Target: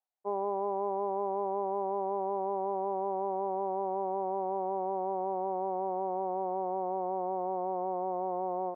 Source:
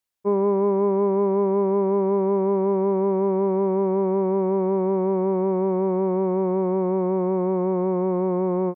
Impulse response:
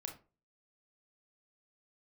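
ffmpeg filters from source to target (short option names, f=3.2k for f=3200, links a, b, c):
-af "areverse,acompressor=mode=upward:threshold=-24dB:ratio=2.5,areverse,bandpass=f=750:t=q:w=5.5:csg=0,volume=3dB"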